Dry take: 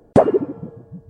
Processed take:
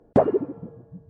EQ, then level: low-pass 2.2 kHz 6 dB/octave; hum notches 50/100/150 Hz; -5.0 dB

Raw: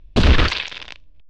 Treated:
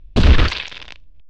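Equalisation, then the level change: bass shelf 180 Hz +5 dB; -1.5 dB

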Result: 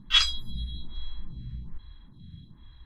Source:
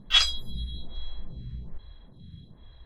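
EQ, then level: high-order bell 550 Hz -13.5 dB 1.1 oct; treble shelf 8.4 kHz -5.5 dB; 0.0 dB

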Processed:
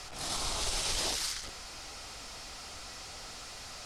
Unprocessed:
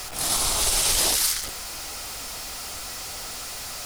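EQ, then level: distance through air 73 m; tone controls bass +1 dB, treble +4 dB; treble shelf 8.9 kHz -4 dB; -8.0 dB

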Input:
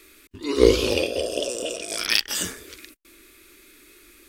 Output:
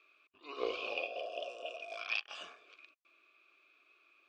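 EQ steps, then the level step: vowel filter a; distance through air 140 m; tilt shelf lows -7.5 dB, about 630 Hz; -3.0 dB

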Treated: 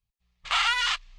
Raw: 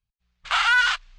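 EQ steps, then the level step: band-stop 1.5 kHz, Q 5.4; dynamic bell 690 Hz, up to -4 dB, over -41 dBFS, Q 0.78; 0.0 dB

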